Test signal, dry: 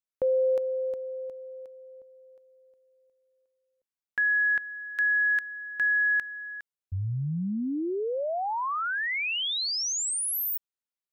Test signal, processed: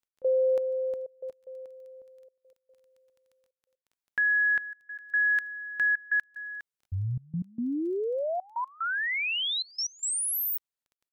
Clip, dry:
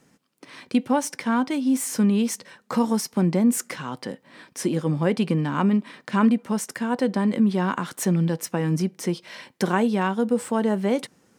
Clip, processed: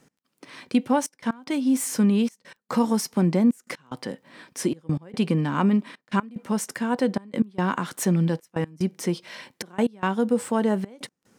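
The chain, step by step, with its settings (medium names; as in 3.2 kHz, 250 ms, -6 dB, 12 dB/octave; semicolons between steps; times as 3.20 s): trance gate "x..xxxxxxxxxx.." 184 bpm -24 dB; crackle 10 per s -51 dBFS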